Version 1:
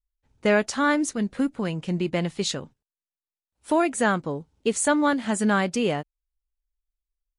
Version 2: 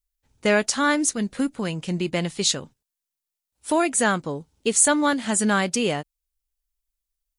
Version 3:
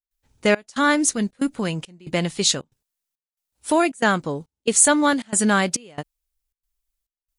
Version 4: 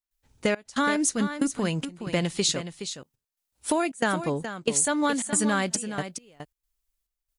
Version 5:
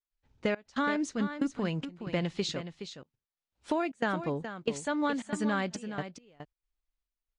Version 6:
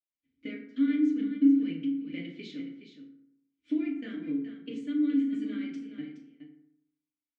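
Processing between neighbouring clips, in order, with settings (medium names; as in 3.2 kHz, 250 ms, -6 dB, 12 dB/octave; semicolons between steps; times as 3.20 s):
treble shelf 3.7 kHz +11 dB
trance gate ".xxxx..xxxxx" 138 bpm -24 dB; trim +2.5 dB
compression, threshold -21 dBFS, peak gain reduction 10.5 dB; on a send: delay 420 ms -10 dB
distance through air 160 m; trim -4.5 dB
vowel filter i; FDN reverb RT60 0.77 s, low-frequency decay 1.1×, high-frequency decay 0.5×, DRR -3.5 dB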